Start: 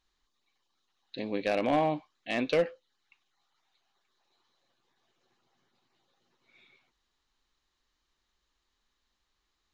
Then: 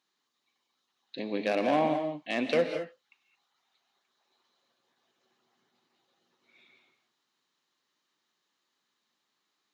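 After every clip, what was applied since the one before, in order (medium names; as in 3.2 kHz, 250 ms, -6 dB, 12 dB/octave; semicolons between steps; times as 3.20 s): high-pass 150 Hz 24 dB/octave; gated-style reverb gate 240 ms rising, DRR 6 dB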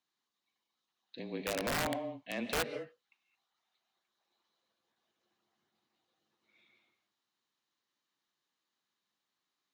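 frequency shift -24 Hz; integer overflow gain 19 dB; trim -7.5 dB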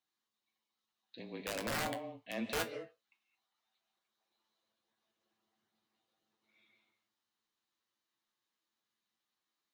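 feedback comb 110 Hz, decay 0.16 s, harmonics all, mix 80%; trim +3 dB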